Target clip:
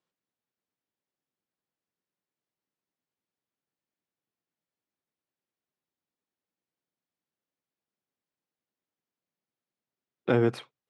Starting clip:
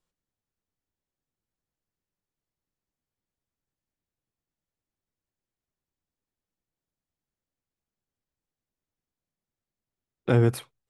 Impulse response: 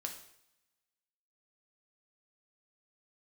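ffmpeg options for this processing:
-af "highpass=190,lowpass=4600"

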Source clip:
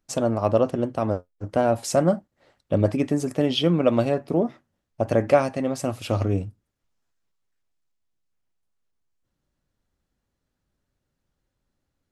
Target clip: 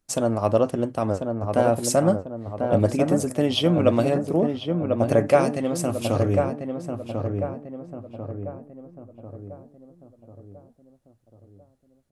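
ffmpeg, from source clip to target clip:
-filter_complex "[0:a]equalizer=f=10000:t=o:w=0.85:g=8.5,asplit=2[s0][s1];[s1]adelay=1044,lowpass=f=1300:p=1,volume=0.596,asplit=2[s2][s3];[s3]adelay=1044,lowpass=f=1300:p=1,volume=0.5,asplit=2[s4][s5];[s5]adelay=1044,lowpass=f=1300:p=1,volume=0.5,asplit=2[s6][s7];[s7]adelay=1044,lowpass=f=1300:p=1,volume=0.5,asplit=2[s8][s9];[s9]adelay=1044,lowpass=f=1300:p=1,volume=0.5,asplit=2[s10][s11];[s11]adelay=1044,lowpass=f=1300:p=1,volume=0.5[s12];[s2][s4][s6][s8][s10][s12]amix=inputs=6:normalize=0[s13];[s0][s13]amix=inputs=2:normalize=0"

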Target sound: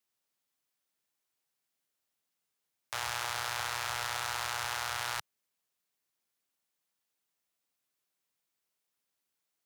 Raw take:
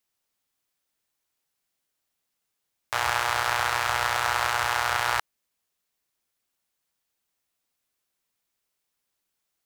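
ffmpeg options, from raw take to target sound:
-filter_complex "[0:a]highpass=100,acrossover=split=150|3000[s0][s1][s2];[s1]alimiter=limit=0.0891:level=0:latency=1:release=31[s3];[s0][s3][s2]amix=inputs=3:normalize=0,volume=0.596"

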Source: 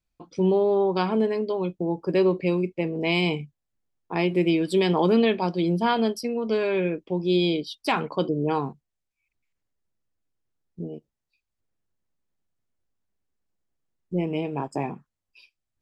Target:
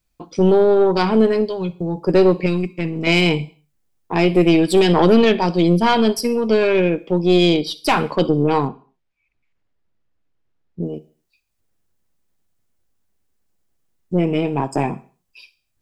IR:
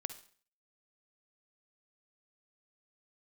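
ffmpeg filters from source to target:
-filter_complex "[0:a]asplit=3[s0][s1][s2];[s0]afade=t=out:st=1.45:d=0.02[s3];[s1]equalizer=f=125:t=o:w=1:g=7,equalizer=f=250:t=o:w=1:g=-9,equalizer=f=500:t=o:w=1:g=-5,equalizer=f=1000:t=o:w=1:g=-6,equalizer=f=2000:t=o:w=1:g=-4,afade=t=in:st=1.45:d=0.02,afade=t=out:st=1.95:d=0.02[s4];[s2]afade=t=in:st=1.95:d=0.02[s5];[s3][s4][s5]amix=inputs=3:normalize=0,asplit=2[s6][s7];[1:a]atrim=start_sample=2205,afade=t=out:st=0.33:d=0.01,atrim=end_sample=14994,highshelf=f=5400:g=11.5[s8];[s7][s8]afir=irnorm=-1:irlink=0,volume=0.668[s9];[s6][s9]amix=inputs=2:normalize=0,aeval=exprs='(tanh(3.55*val(0)+0.45)-tanh(0.45))/3.55':c=same,asettb=1/sr,asplit=3[s10][s11][s12];[s10]atrim=end=2.464[s13];[s11]atrim=start=2.46:end=3.07,asetpts=PTS-STARTPTS,afade=t=in:d=0.004:c=qsin,afade=t=out:st=0.606:d=0.004:c=qsin,equalizer=f=540:t=o:w=1.4:g=-12[s14];[s12]atrim=start=3.066[s15];[s13][s14]acrossfade=d=0.004:c1=hsin:c2=qsin[s16];[s16][s15]acrossfade=d=0.004:c1=qsin:c2=hsin,asettb=1/sr,asplit=3[s17][s18][s19];[s17]atrim=end=8.684[s20];[s18]atrim=start=8.68:end=10.83,asetpts=PTS-STARTPTS,afade=t=in:d=0.004:c=qsin,afade=t=out:st=2.146:d=0.004:c=qsin,lowpass=3200[s21];[s19]atrim=start=10.826[s22];[s20][s21]acrossfade=d=0.004:c1=hsin:c2=qsin[s23];[s23][s22]acrossfade=d=0.004:c1=qsin:c2=hsin,volume=2.11"

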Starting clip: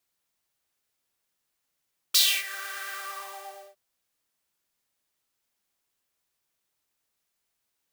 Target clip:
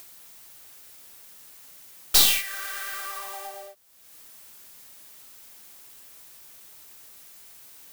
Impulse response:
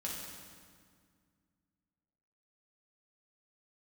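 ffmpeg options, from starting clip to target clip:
-af "acompressor=mode=upward:threshold=0.0251:ratio=2.5,highshelf=f=8800:g=7.5,aeval=exprs='0.794*(cos(1*acos(clip(val(0)/0.794,-1,1)))-cos(1*PI/2))+0.251*(cos(2*acos(clip(val(0)/0.794,-1,1)))-cos(2*PI/2))+0.282*(cos(4*acos(clip(val(0)/0.794,-1,1)))-cos(4*PI/2))':c=same"

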